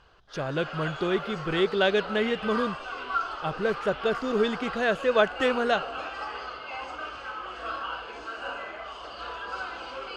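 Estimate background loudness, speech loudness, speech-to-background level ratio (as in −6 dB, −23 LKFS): −35.0 LKFS, −27.0 LKFS, 8.0 dB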